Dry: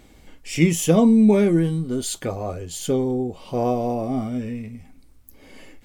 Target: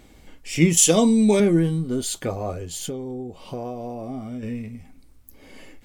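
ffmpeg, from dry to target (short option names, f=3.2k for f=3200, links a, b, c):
-filter_complex "[0:a]asettb=1/sr,asplit=3[a][b][c];[a]atrim=end=0.774[d];[b]atrim=start=0.77:end=1.4,asetpts=PTS-STARTPTS,afade=t=in:d=0.004:c=qsin,afade=t=out:st=0.626:d=0.004:c=qsin,equalizer=f=125:t=o:w=1:g=-11,equalizer=f=4k:t=o:w=1:g=9,equalizer=f=8k:t=o:w=1:g=12[e];[c]atrim=start=1.396[f];[d][e]acrossfade=d=0.004:c1=hsin:c2=qsin[g];[g][f]acrossfade=d=0.004:c1=qsin:c2=hsin,asettb=1/sr,asplit=3[h][i][j];[h]atrim=end=2.854[k];[i]atrim=start=2.85:end=4.43,asetpts=PTS-STARTPTS,afade=t=in:d=0.004:c=qsin,afade=t=out:st=1.576:d=0.004:c=qsin,acompressor=threshold=-30dB:ratio=4[l];[j]atrim=start=4.426[m];[k][l]acrossfade=d=0.004:c1=hsin:c2=qsin[n];[n][m]acrossfade=d=0.004:c1=qsin:c2=hsin"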